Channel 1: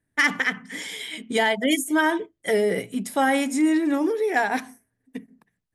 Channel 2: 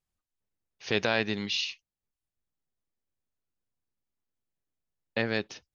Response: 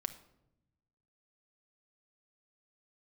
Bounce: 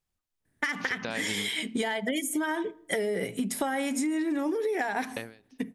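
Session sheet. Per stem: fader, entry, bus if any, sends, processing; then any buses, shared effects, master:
+2.0 dB, 0.45 s, send -11.5 dB, compressor, threshold -24 dBFS, peak gain reduction 9 dB
+2.5 dB, 0.00 s, no send, compressor, threshold -31 dBFS, peak gain reduction 10 dB; ending taper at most 130 dB/s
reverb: on, RT60 0.85 s, pre-delay 5 ms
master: compressor, threshold -26 dBFS, peak gain reduction 8 dB

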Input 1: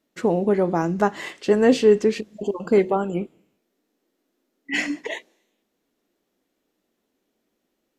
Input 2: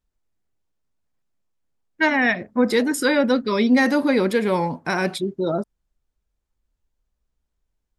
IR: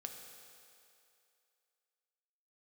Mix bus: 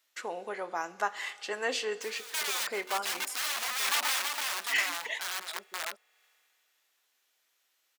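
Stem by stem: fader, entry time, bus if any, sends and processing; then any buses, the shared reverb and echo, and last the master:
-4.5 dB, 0.00 s, send -8.5 dB, no echo send, dry
-6.0 dB, 0.00 s, send -22 dB, echo send -4 dB, wrapped overs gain 16.5 dB; auto duck -22 dB, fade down 0.65 s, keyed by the first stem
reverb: on, RT60 2.6 s, pre-delay 3 ms
echo: echo 0.33 s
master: HPF 1100 Hz 12 dB/oct; mismatched tape noise reduction encoder only

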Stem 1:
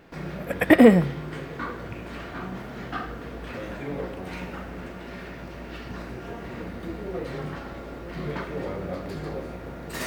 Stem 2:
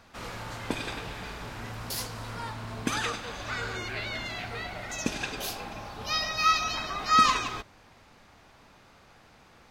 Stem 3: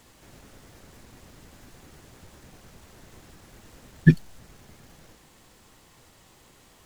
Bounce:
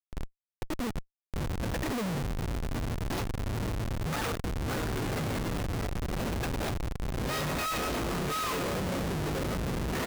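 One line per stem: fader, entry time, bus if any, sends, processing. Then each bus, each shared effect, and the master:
+2.5 dB, 0.00 s, no send, echo send -11.5 dB, LPF 4300 Hz 12 dB/oct; auto duck -23 dB, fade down 0.55 s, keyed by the third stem
-1.5 dB, 1.20 s, no send, echo send -20.5 dB, bell 8600 Hz -7 dB 1.4 oct
-6.0 dB, 0.00 s, no send, echo send -13 dB, dry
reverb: off
echo: echo 1.128 s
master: Schmitt trigger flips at -33 dBFS

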